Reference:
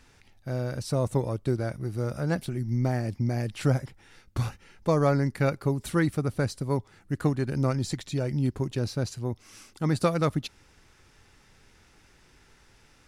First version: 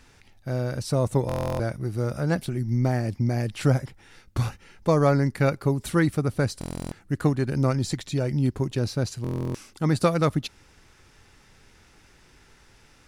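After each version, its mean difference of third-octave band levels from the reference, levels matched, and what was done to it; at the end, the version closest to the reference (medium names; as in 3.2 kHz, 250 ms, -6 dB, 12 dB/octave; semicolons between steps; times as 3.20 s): 1.0 dB: buffer glitch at 1.27/6.59/9.22 s, samples 1024, times 13; trim +3 dB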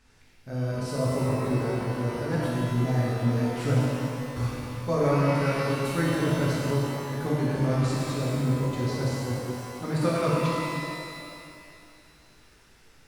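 10.0 dB: pitch-shifted reverb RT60 2.4 s, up +12 st, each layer -8 dB, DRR -7.5 dB; trim -7.5 dB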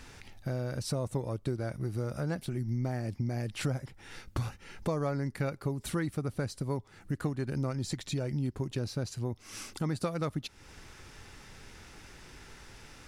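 4.0 dB: compression 3:1, threshold -42 dBFS, peak gain reduction 18 dB; trim +7.5 dB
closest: first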